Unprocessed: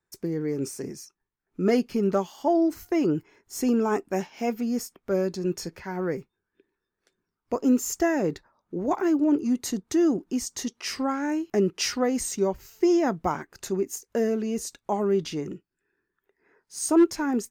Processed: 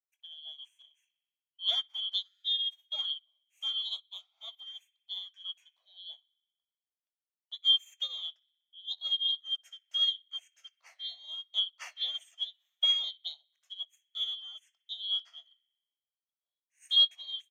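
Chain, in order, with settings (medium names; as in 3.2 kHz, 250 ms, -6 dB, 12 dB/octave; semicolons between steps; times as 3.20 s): four frequency bands reordered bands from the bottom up 2413; elliptic high-pass 640 Hz, stop band 80 dB; treble shelf 6.6 kHz -6 dB; doubling 21 ms -12 dB; on a send: band-passed feedback delay 62 ms, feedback 76%, band-pass 2.4 kHz, level -15 dB; on the sum: upward expansion 2.5:1, over -38 dBFS; trim -1.5 dB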